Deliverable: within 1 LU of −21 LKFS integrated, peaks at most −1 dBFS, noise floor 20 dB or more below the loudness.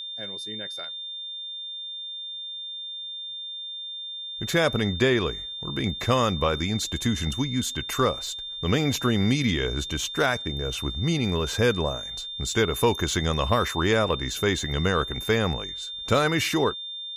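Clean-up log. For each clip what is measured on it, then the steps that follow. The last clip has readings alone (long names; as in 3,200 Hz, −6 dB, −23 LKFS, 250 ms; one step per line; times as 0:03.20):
interfering tone 3,600 Hz; level of the tone −33 dBFS; integrated loudness −26.0 LKFS; sample peak −6.5 dBFS; target loudness −21.0 LKFS
→ notch filter 3,600 Hz, Q 30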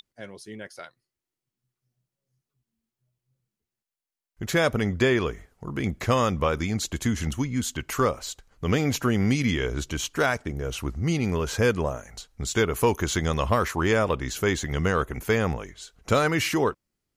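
interfering tone none found; integrated loudness −25.5 LKFS; sample peak −6.5 dBFS; target loudness −21.0 LKFS
→ level +4.5 dB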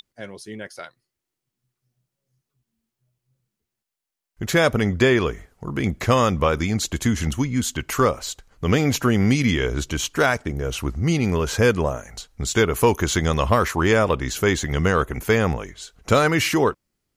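integrated loudness −21.0 LKFS; sample peak −2.0 dBFS; background noise floor −84 dBFS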